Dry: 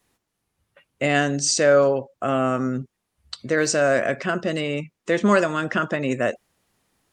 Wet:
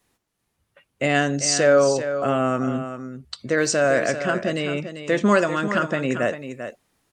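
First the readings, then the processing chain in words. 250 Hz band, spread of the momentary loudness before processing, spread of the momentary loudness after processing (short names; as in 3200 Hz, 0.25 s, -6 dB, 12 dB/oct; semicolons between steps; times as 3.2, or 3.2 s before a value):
+0.5 dB, 10 LU, 15 LU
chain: echo 0.393 s -10 dB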